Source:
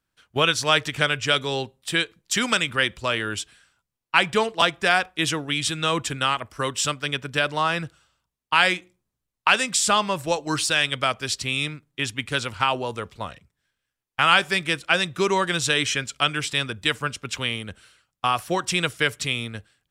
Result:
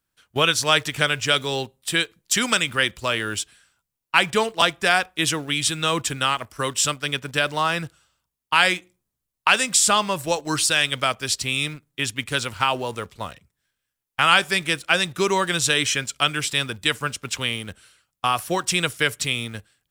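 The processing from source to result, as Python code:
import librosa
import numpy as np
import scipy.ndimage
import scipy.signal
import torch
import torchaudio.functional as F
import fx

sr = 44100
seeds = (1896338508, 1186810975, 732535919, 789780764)

p1 = fx.high_shelf(x, sr, hz=8300.0, db=10.0)
p2 = fx.quant_dither(p1, sr, seeds[0], bits=6, dither='none')
p3 = p1 + (p2 * 10.0 ** (-12.0 / 20.0))
y = p3 * 10.0 ** (-1.5 / 20.0)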